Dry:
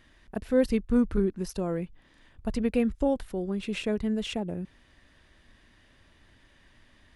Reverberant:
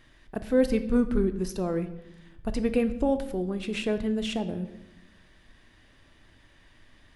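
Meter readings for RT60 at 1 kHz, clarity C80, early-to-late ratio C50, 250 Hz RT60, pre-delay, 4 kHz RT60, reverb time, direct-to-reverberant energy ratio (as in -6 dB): 0.85 s, 15.0 dB, 13.0 dB, 1.3 s, 3 ms, 0.70 s, 0.90 s, 9.0 dB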